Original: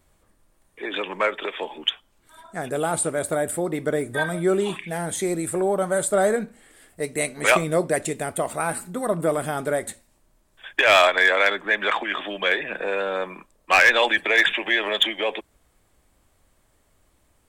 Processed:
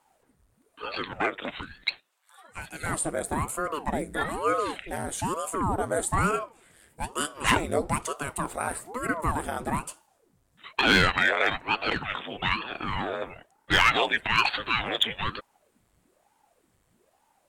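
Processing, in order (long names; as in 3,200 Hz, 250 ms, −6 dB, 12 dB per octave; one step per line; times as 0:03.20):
0:01.61–0:02.86: Butterworth high-pass 700 Hz 36 dB per octave
ring modulator whose carrier an LFO sweeps 470 Hz, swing 90%, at 1.1 Hz
level −2 dB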